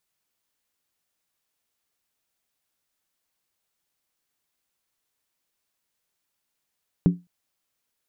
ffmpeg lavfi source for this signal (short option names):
-f lavfi -i "aevalsrc='0.299*pow(10,-3*t/0.23)*sin(2*PI*176*t)+0.119*pow(10,-3*t/0.182)*sin(2*PI*280.5*t)+0.0473*pow(10,-3*t/0.157)*sin(2*PI*375.9*t)+0.0188*pow(10,-3*t/0.152)*sin(2*PI*404.1*t)+0.0075*pow(10,-3*t/0.141)*sin(2*PI*466.9*t)':d=0.21:s=44100"